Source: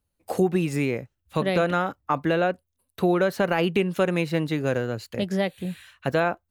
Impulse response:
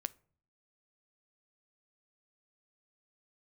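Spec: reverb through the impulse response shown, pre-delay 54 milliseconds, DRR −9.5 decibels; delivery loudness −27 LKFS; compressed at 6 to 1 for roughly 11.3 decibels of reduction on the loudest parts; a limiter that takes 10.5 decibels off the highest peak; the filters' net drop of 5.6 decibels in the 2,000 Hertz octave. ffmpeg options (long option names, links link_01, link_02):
-filter_complex "[0:a]equalizer=frequency=2000:width_type=o:gain=-8,acompressor=threshold=-30dB:ratio=6,alimiter=level_in=1.5dB:limit=-24dB:level=0:latency=1,volume=-1.5dB,asplit=2[link_01][link_02];[1:a]atrim=start_sample=2205,adelay=54[link_03];[link_02][link_03]afir=irnorm=-1:irlink=0,volume=11dB[link_04];[link_01][link_04]amix=inputs=2:normalize=0"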